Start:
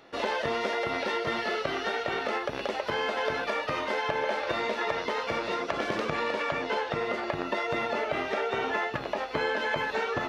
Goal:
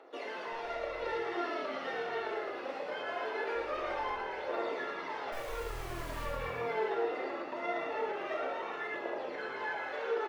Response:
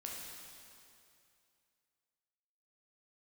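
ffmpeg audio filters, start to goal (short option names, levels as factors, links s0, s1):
-filter_complex "[0:a]highpass=f=370:w=0.5412,highpass=f=370:w=1.3066,highshelf=f=2200:g=-11,alimiter=level_in=1.5:limit=0.0631:level=0:latency=1:release=191,volume=0.668,asettb=1/sr,asplit=3[s0][s1][s2];[s0]atrim=end=0.524[s3];[s1]atrim=start=0.52:end=0.99,asetpts=PTS-STARTPTS,afade=t=in:d=0.004:c=qsin,afade=t=out:st=0.466:d=0.004:c=qsin,aeval=exprs='(tanh(15.8*val(0)+0.4)-tanh(0.4))/15.8':c=same[s4];[s2]atrim=start=0.986[s5];[s3][s4]acrossfade=d=0.004:c1=hsin:c2=qsin[s6];[s6][s5]acrossfade=d=0.004:c1=qsin:c2=hsin,asettb=1/sr,asplit=3[s7][s8][s9];[s7]atrim=end=3.554[s10];[s8]atrim=start=3.55:end=4.13,asetpts=PTS-STARTPTS,afade=t=in:d=0.004:c=qsin,afade=t=out:st=0.576:d=0.004:c=qsin,aeval=exprs='val(0)+0.00126*(sin(2*PI*50*n/s)+sin(2*PI*2*50*n/s)/2+sin(2*PI*3*50*n/s)/3+sin(2*PI*4*50*n/s)/4+sin(2*PI*5*50*n/s)/5)':c=same[s11];[s9]atrim=start=4.126[s12];[s10][s11]acrossfade=d=0.004:c1=hsin:c2=qsin[s13];[s13][s12]acrossfade=d=0.004:c1=qsin:c2=hsin,asettb=1/sr,asplit=3[s14][s15][s16];[s14]atrim=end=5.324[s17];[s15]atrim=start=5.32:end=6.25,asetpts=PTS-STARTPTS,afade=t=in:d=0.004:c=qsin,afade=t=out:st=0.926:d=0.004:c=qsin,acrusher=bits=5:dc=4:mix=0:aa=0.000001[s18];[s16]atrim=start=6.246[s19];[s17][s18]acrossfade=d=0.004:c1=hsin:c2=qsin[s20];[s20][s19]acrossfade=d=0.004:c1=qsin:c2=hsin,aphaser=in_gain=1:out_gain=1:delay=4.6:decay=0.68:speed=0.22:type=triangular,asplit=9[s21][s22][s23][s24][s25][s26][s27][s28][s29];[s22]adelay=112,afreqshift=-41,volume=0.596[s30];[s23]adelay=224,afreqshift=-82,volume=0.347[s31];[s24]adelay=336,afreqshift=-123,volume=0.2[s32];[s25]adelay=448,afreqshift=-164,volume=0.116[s33];[s26]adelay=560,afreqshift=-205,volume=0.0676[s34];[s27]adelay=672,afreqshift=-246,volume=0.0389[s35];[s28]adelay=784,afreqshift=-287,volume=0.0226[s36];[s29]adelay=896,afreqshift=-328,volume=0.0132[s37];[s21][s30][s31][s32][s33][s34][s35][s36][s37]amix=inputs=9:normalize=0[s38];[1:a]atrim=start_sample=2205,atrim=end_sample=3528[s39];[s38][s39]afir=irnorm=-1:irlink=0"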